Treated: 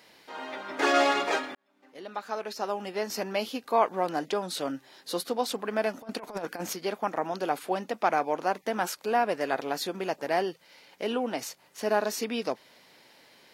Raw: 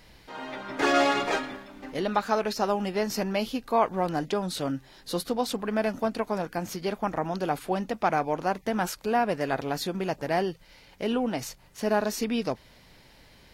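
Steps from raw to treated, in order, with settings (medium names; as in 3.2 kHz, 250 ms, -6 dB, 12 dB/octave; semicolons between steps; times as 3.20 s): high-pass 300 Hz 12 dB/octave; 1.55–3.47 s: fade in; 6.02–6.73 s: compressor with a negative ratio -34 dBFS, ratio -0.5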